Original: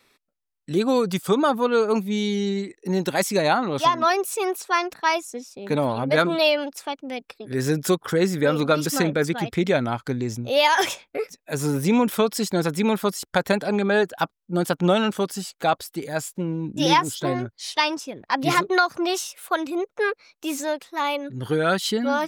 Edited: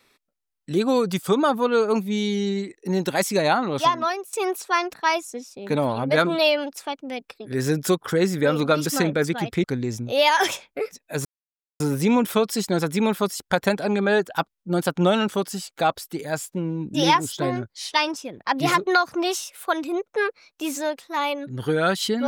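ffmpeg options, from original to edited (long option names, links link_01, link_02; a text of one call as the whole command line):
ffmpeg -i in.wav -filter_complex "[0:a]asplit=4[link_01][link_02][link_03][link_04];[link_01]atrim=end=4.33,asetpts=PTS-STARTPTS,afade=type=out:start_time=3.86:duration=0.47:silence=0.11885[link_05];[link_02]atrim=start=4.33:end=9.642,asetpts=PTS-STARTPTS,afade=type=in:duration=0.004:curve=hsin:silence=0.11885[link_06];[link_03]atrim=start=10.018:end=11.63,asetpts=PTS-STARTPTS,afade=type=out:start_time=1.608:duration=0.004:curve=hsin,apad=pad_dur=0.55[link_07];[link_04]atrim=start=11.63,asetpts=PTS-STARTPTS,afade=type=in:duration=0.004:curve=hsin[link_08];[link_05][link_06]concat=n=2:v=0:a=1[link_09];[link_07][link_08]concat=n=2:v=0:a=1[link_10];[link_09][link_10]acrossfade=duration=0.004:curve1=hsin:curve2=hsin" out.wav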